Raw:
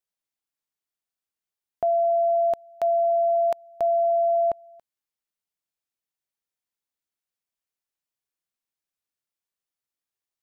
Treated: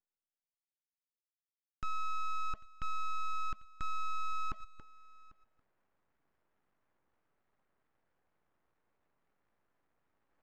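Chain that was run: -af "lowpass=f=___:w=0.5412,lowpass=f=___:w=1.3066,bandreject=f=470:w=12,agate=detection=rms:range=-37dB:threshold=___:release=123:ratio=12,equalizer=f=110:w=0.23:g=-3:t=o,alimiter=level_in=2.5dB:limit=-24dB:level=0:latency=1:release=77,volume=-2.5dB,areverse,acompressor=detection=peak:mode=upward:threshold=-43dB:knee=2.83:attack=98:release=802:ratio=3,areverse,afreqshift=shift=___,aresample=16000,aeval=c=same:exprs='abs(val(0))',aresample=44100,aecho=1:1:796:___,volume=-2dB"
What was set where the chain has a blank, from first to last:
1100, 1100, -36dB, -36, 0.0794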